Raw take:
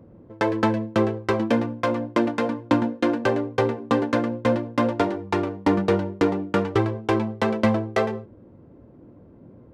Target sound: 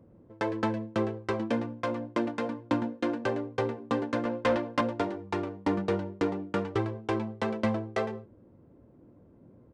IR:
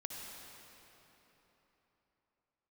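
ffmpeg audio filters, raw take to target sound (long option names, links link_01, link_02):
-filter_complex "[0:a]aresample=22050,aresample=44100,asettb=1/sr,asplit=3[link_01][link_02][link_03];[link_01]atrim=end=4.254[link_04];[link_02]atrim=start=4.25:end=4.81,asetpts=PTS-STARTPTS,afade=type=in:duration=0.004:curve=qsin,afade=type=out:start_time=0.556:duration=0.004:curve=qsin,asplit=2[link_05][link_06];[link_06]highpass=frequency=720:poles=1,volume=17dB,asoftclip=type=tanh:threshold=-8dB[link_07];[link_05][link_07]amix=inputs=2:normalize=0,lowpass=frequency=5000:poles=1,volume=-6dB[link_08];[link_03]atrim=start=4.806[link_09];[link_04][link_08]acrossfade=duration=0.004:curve1=hsin:curve2=qsin[link_10];[link_10][link_09]acrossfade=duration=0.004:curve1=qsin:curve2=hsin,volume=-8dB"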